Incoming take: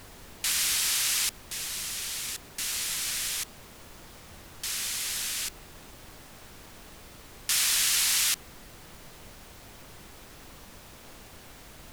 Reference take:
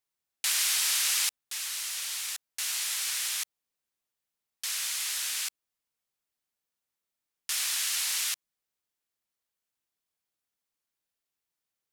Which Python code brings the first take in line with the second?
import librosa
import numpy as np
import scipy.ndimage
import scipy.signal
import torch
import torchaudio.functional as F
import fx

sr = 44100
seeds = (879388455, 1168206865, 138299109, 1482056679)

y = fx.noise_reduce(x, sr, print_start_s=10.55, print_end_s=11.05, reduce_db=30.0)
y = fx.gain(y, sr, db=fx.steps((0.0, 0.0), (5.89, -5.0)))